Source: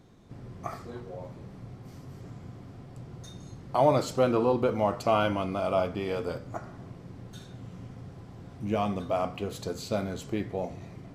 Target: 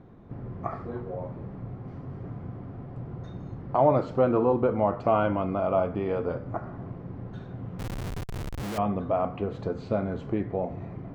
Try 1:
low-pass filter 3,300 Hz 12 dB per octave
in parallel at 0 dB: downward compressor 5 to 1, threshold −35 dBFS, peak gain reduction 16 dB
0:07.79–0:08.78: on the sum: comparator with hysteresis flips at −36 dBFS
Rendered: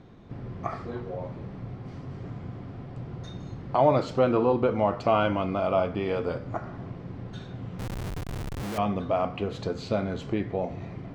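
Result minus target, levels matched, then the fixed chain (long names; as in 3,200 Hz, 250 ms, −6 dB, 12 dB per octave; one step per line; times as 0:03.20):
4,000 Hz band +7.5 dB
low-pass filter 1,500 Hz 12 dB per octave
in parallel at 0 dB: downward compressor 5 to 1, threshold −35 dBFS, peak gain reduction 16 dB
0:07.79–0:08.78: on the sum: comparator with hysteresis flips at −36 dBFS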